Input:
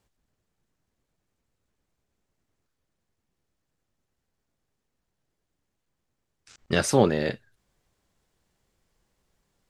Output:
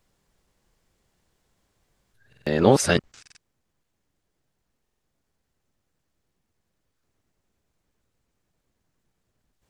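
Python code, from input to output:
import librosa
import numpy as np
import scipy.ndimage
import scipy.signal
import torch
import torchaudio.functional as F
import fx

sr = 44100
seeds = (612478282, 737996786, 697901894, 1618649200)

y = np.flip(x).copy()
y = fx.buffer_glitch(y, sr, at_s=(2.28, 3.21, 4.83), block=2048, repeats=3)
y = y * 10.0 ** (3.0 / 20.0)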